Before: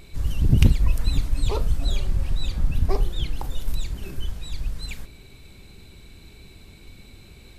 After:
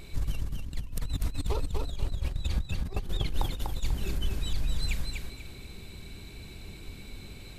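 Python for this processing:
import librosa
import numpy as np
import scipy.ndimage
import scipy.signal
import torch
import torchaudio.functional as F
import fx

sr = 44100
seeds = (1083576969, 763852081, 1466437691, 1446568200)

y = fx.over_compress(x, sr, threshold_db=-24.0, ratio=-0.5)
y = fx.echo_feedback(y, sr, ms=245, feedback_pct=28, wet_db=-4.0)
y = y * 10.0 ** (-4.5 / 20.0)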